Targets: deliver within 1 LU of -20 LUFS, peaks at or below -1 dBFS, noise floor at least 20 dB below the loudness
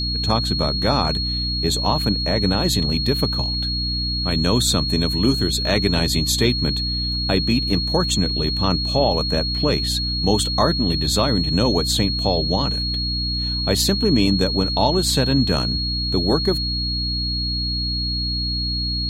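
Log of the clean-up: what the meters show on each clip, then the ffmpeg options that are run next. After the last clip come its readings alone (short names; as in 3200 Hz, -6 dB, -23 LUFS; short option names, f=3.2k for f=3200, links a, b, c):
hum 60 Hz; harmonics up to 300 Hz; hum level -23 dBFS; steady tone 4300 Hz; tone level -23 dBFS; loudness -19.5 LUFS; peak -3.5 dBFS; loudness target -20.0 LUFS
-> -af "bandreject=f=60:t=h:w=4,bandreject=f=120:t=h:w=4,bandreject=f=180:t=h:w=4,bandreject=f=240:t=h:w=4,bandreject=f=300:t=h:w=4"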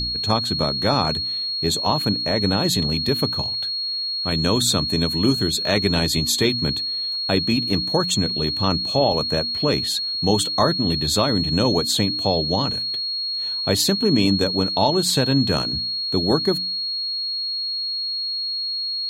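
hum none; steady tone 4300 Hz; tone level -23 dBFS
-> -af "bandreject=f=4.3k:w=30"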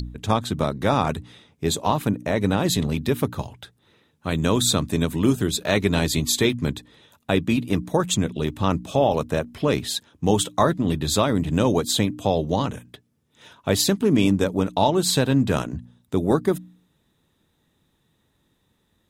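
steady tone none; loudness -22.5 LUFS; peak -4.5 dBFS; loudness target -20.0 LUFS
-> -af "volume=2.5dB"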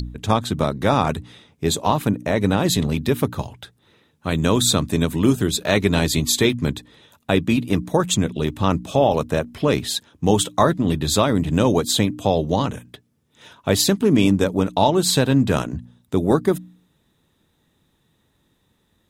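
loudness -20.0 LUFS; peak -2.0 dBFS; noise floor -66 dBFS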